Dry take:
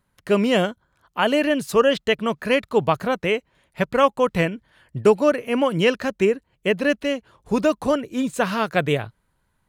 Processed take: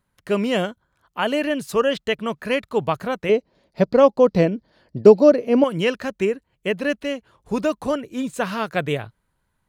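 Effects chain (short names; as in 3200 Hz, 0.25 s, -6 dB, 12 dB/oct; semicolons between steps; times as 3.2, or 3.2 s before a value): 3.29–5.64 EQ curve 130 Hz 0 dB, 190 Hz +8 dB, 620 Hz +8 dB, 920 Hz +1 dB, 1500 Hz -4 dB, 3200 Hz -4 dB, 4700 Hz +10 dB, 8400 Hz -11 dB, 13000 Hz -8 dB; gain -2.5 dB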